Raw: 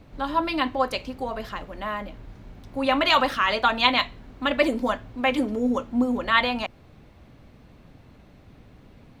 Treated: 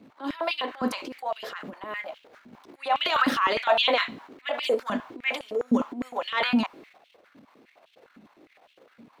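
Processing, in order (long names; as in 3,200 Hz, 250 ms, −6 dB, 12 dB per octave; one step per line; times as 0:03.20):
transient designer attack −12 dB, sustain +8 dB
high-pass on a step sequencer 9.8 Hz 230–3,000 Hz
level −5 dB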